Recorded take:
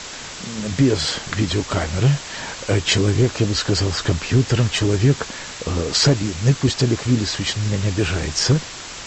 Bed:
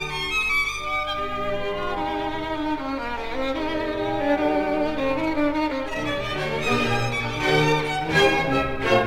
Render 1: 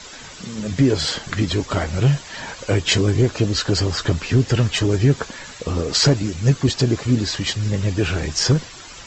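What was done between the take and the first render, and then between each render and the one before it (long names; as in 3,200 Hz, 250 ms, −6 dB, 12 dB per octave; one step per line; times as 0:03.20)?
broadband denoise 10 dB, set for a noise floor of −34 dBFS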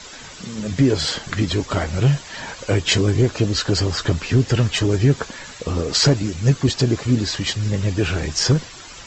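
no processing that can be heard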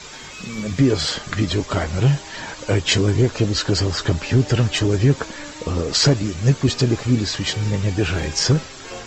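mix in bed −16.5 dB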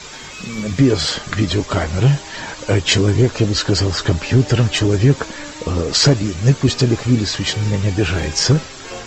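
level +3 dB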